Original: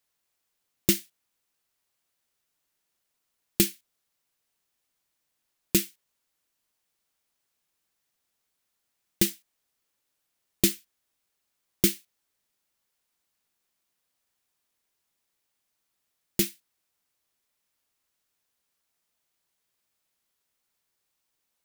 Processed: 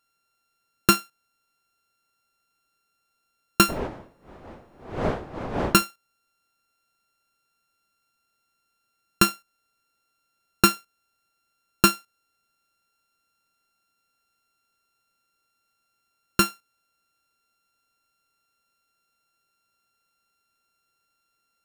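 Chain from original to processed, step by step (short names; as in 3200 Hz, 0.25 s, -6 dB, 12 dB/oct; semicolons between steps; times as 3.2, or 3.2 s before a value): sample sorter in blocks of 32 samples; 3.68–5.82 wind noise 640 Hz -33 dBFS; gain +4.5 dB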